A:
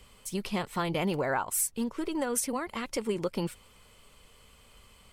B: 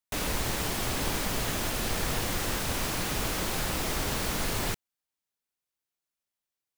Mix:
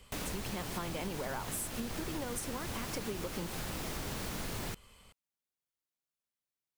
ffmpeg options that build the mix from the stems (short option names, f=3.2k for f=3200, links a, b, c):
-filter_complex "[0:a]volume=-2.5dB[a];[1:a]equalizer=f=160:t=o:w=2.3:g=4,volume=-6dB[b];[a][b]amix=inputs=2:normalize=0,acompressor=threshold=-35dB:ratio=6"